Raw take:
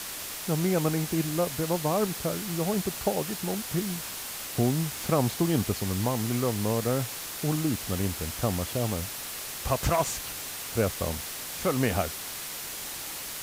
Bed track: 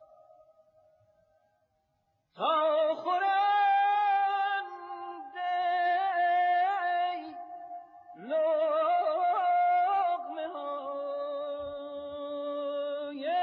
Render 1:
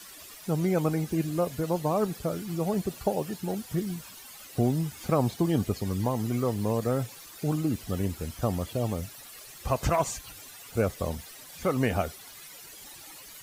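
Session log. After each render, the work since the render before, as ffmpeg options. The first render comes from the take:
-af "afftdn=nr=14:nf=-37"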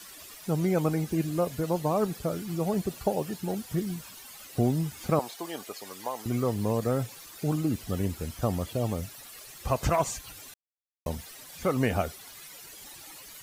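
-filter_complex "[0:a]asettb=1/sr,asplit=3[s0][s1][s2];[s0]atrim=end=5.194[s3];[s1]atrim=start=5.19:end=6.26,asetpts=PTS-STARTPTS,afade=t=in:d=0.004:c=qsin,afade=t=out:st=1.066:d=0.004:c=qsin,highpass=650[s4];[s2]atrim=start=6.256[s5];[s3][s4]acrossfade=d=0.004:c1=hsin:c2=qsin[s6];[s6][s5]acrossfade=d=0.004:c1=qsin:c2=hsin,asplit=3[s7][s8][s9];[s7]atrim=end=10.54,asetpts=PTS-STARTPTS,afade=t=out:st=10.536:d=0.004:c=hsin[s10];[s8]atrim=start=10.54:end=11.06,asetpts=PTS-STARTPTS,volume=0[s11];[s9]atrim=start=11.06,asetpts=PTS-STARTPTS,afade=t=in:d=0.004:c=hsin[s12];[s10][s11][s12]concat=n=3:v=0:a=1"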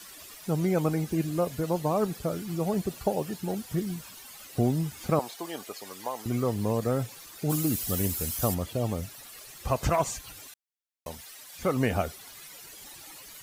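-filter_complex "[0:a]asplit=3[s0][s1][s2];[s0]afade=t=out:st=7.49:d=0.02[s3];[s1]aemphasis=mode=production:type=75kf,afade=t=in:st=7.49:d=0.02,afade=t=out:st=8.53:d=0.02[s4];[s2]afade=t=in:st=8.53:d=0.02[s5];[s3][s4][s5]amix=inputs=3:normalize=0,asettb=1/sr,asplit=3[s6][s7][s8];[s6]atrim=end=10.474[s9];[s7]atrim=start=10.47:end=11.59,asetpts=PTS-STARTPTS,afade=t=in:d=0.004:c=qsin,afade=t=out:st=1.116:d=0.004:c=qsin,lowshelf=f=490:g=-12[s10];[s8]atrim=start=11.586[s11];[s9][s10]acrossfade=d=0.004:c1=hsin:c2=qsin[s12];[s12][s11]acrossfade=d=0.004:c1=qsin:c2=hsin"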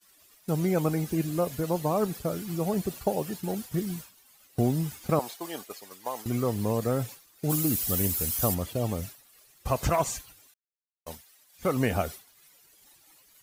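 -af "agate=range=0.0224:threshold=0.0158:ratio=3:detection=peak,highshelf=f=11000:g=6"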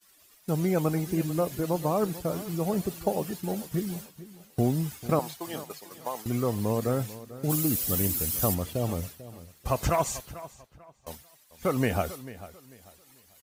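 -filter_complex "[0:a]asplit=2[s0][s1];[s1]adelay=443,lowpass=f=3900:p=1,volume=0.158,asplit=2[s2][s3];[s3]adelay=443,lowpass=f=3900:p=1,volume=0.29,asplit=2[s4][s5];[s5]adelay=443,lowpass=f=3900:p=1,volume=0.29[s6];[s0][s2][s4][s6]amix=inputs=4:normalize=0"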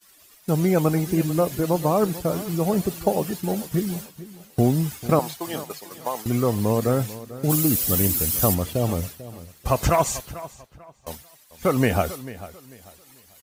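-af "volume=2"

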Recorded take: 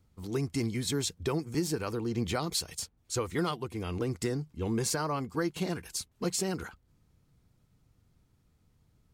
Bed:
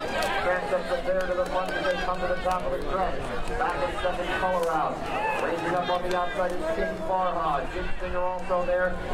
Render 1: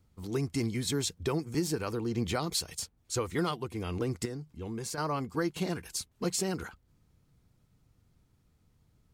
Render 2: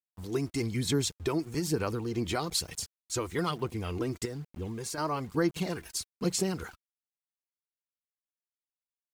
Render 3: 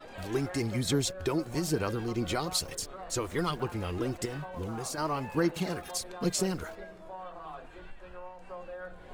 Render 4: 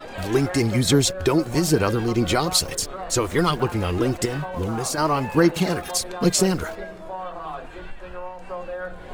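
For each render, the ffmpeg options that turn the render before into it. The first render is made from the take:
-filter_complex "[0:a]asettb=1/sr,asplit=3[s0][s1][s2];[s0]atrim=end=4.254[s3];[s1]atrim=start=4.25:end=4.98,asetpts=PTS-STARTPTS,afade=t=in:d=0.004:c=qsin,afade=t=out:st=0.726:d=0.004:c=qsin,acompressor=threshold=0.00447:ratio=1.5:attack=3.2:release=140:knee=1:detection=peak[s4];[s2]atrim=start=4.976[s5];[s3][s4]acrossfade=d=0.004:c1=hsin:c2=qsin[s6];[s6][s5]acrossfade=d=0.004:c1=qsin:c2=hsin"
-af "aeval=exprs='val(0)*gte(abs(val(0)),0.00282)':c=same,aphaser=in_gain=1:out_gain=1:delay=3.2:decay=0.39:speed=1.1:type=sinusoidal"
-filter_complex "[1:a]volume=0.133[s0];[0:a][s0]amix=inputs=2:normalize=0"
-af "volume=3.35"

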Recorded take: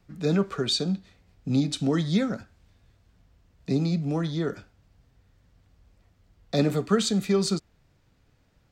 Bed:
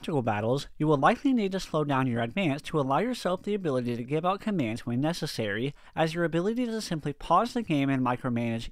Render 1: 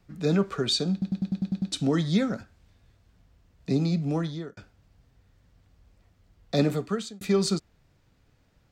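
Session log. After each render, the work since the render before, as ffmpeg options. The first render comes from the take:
-filter_complex "[0:a]asplit=11[s0][s1][s2][s3][s4][s5][s6][s7][s8][s9][s10];[s0]atrim=end=1.022[s11];[s1]atrim=start=0.918:end=1.022[s12];[s2]atrim=start=0.918:end=1.022[s13];[s3]atrim=start=0.918:end=1.022[s14];[s4]atrim=start=0.918:end=1.022[s15];[s5]atrim=start=0.918:end=1.022[s16];[s6]atrim=start=0.918:end=1.022[s17];[s7]atrim=start=0.918:end=1.022[s18];[s8]atrim=start=1.718:end=4.57,asetpts=PTS-STARTPTS,afade=t=out:st=2.452:d=0.4[s19];[s9]atrim=start=4.57:end=7.21,asetpts=PTS-STARTPTS,afade=t=in:d=0.004:c=hsin,afade=t=out:st=2.06:d=0.58[s20];[s10]atrim=start=7.21,asetpts=PTS-STARTPTS,afade=t=in:d=0.004:c=hsin[s21];[s11][s12]acrossfade=d=0.004:c1=hsin:c2=hsin[s22];[s22][s13]acrossfade=d=0.004:c1=hsin:c2=hsin[s23];[s23][s14]acrossfade=d=0.004:c1=hsin:c2=hsin[s24];[s24][s15]acrossfade=d=0.004:c1=hsin:c2=hsin[s25];[s25][s16]acrossfade=d=0.004:c1=hsin:c2=hsin[s26];[s26][s17]acrossfade=d=0.004:c1=hsin:c2=hsin[s27];[s27][s18]acrossfade=d=0.004:c1=hsin:c2=hsin[s28];[s19][s20][s21]concat=n=3:v=0:a=1[s29];[s28][s29]acrossfade=d=0.004:c1=hsin:c2=hsin"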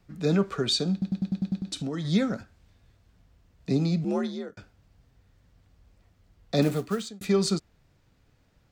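-filter_complex "[0:a]asettb=1/sr,asplit=3[s0][s1][s2];[s0]atrim=end=1.574[s3];[s1]atrim=start=1.57:end=2.05,asetpts=PTS-STARTPTS,afade=t=in:d=0.004:c=qsin,afade=t=out:st=0.476:d=0.004:c=qsin,acompressor=threshold=0.0398:ratio=6:attack=3.2:release=140:knee=1:detection=peak[s4];[s2]atrim=start=2.046[s5];[s3][s4]acrossfade=d=0.004:c1=hsin:c2=qsin[s6];[s6][s5]acrossfade=d=0.004:c1=qsin:c2=hsin,asettb=1/sr,asplit=3[s7][s8][s9];[s7]atrim=end=4.044[s10];[s8]atrim=start=4.04:end=4.5,asetpts=PTS-STARTPTS,afade=t=in:d=0.004:c=qsin,afade=t=out:st=0.456:d=0.004:c=qsin,afreqshift=59[s11];[s9]atrim=start=4.496[s12];[s10][s11]acrossfade=d=0.004:c1=hsin:c2=qsin[s13];[s13][s12]acrossfade=d=0.004:c1=qsin:c2=hsin,asettb=1/sr,asplit=3[s14][s15][s16];[s14]atrim=end=6.624[s17];[s15]atrim=start=6.62:end=7.08,asetpts=PTS-STARTPTS,afade=t=in:d=0.004:c=qsin,afade=t=out:st=0.456:d=0.004:c=qsin,acrusher=bits=5:mode=log:mix=0:aa=0.000001[s18];[s16]atrim=start=7.076[s19];[s17][s18]acrossfade=d=0.004:c1=hsin:c2=qsin[s20];[s20][s19]acrossfade=d=0.004:c1=qsin:c2=hsin"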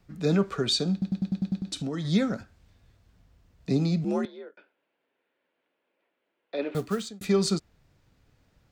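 -filter_complex "[0:a]asettb=1/sr,asplit=3[s0][s1][s2];[s0]atrim=end=4.254[s3];[s1]atrim=start=4.25:end=6.75,asetpts=PTS-STARTPTS,afade=t=in:d=0.004:c=qsin,afade=t=out:st=2.496:d=0.004:c=qsin,highpass=f=380:w=0.5412,highpass=f=380:w=1.3066,equalizer=f=460:t=q:w=4:g=-4,equalizer=f=740:t=q:w=4:g=-9,equalizer=f=1200:t=q:w=4:g=-9,equalizer=f=1900:t=q:w=4:g=-5,lowpass=f=2800:w=0.5412,lowpass=f=2800:w=1.3066[s4];[s2]atrim=start=6.746[s5];[s3][s4]acrossfade=d=0.004:c1=hsin:c2=qsin[s6];[s6][s5]acrossfade=d=0.004:c1=qsin:c2=hsin"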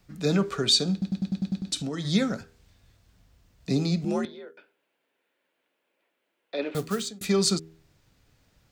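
-af "highshelf=f=2800:g=7.5,bandreject=f=80.43:t=h:w=4,bandreject=f=160.86:t=h:w=4,bandreject=f=241.29:t=h:w=4,bandreject=f=321.72:t=h:w=4,bandreject=f=402.15:t=h:w=4,bandreject=f=482.58:t=h:w=4"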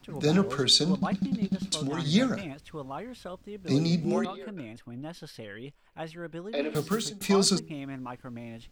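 -filter_complex "[1:a]volume=0.251[s0];[0:a][s0]amix=inputs=2:normalize=0"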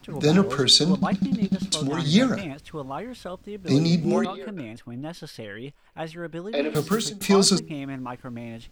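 -af "volume=1.78"

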